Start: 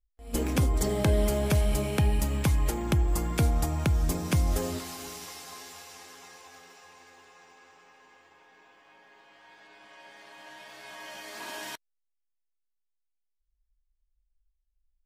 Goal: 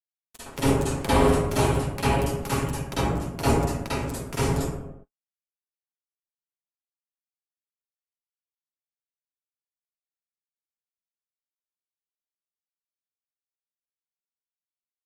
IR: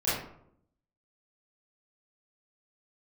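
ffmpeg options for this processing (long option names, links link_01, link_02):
-filter_complex "[0:a]acrusher=bits=2:mix=0:aa=0.5,aecho=1:1:7.3:0.42[link_01];[1:a]atrim=start_sample=2205,afade=type=out:start_time=0.31:duration=0.01,atrim=end_sample=14112,asetrate=24696,aresample=44100[link_02];[link_01][link_02]afir=irnorm=-1:irlink=0,volume=-5.5dB"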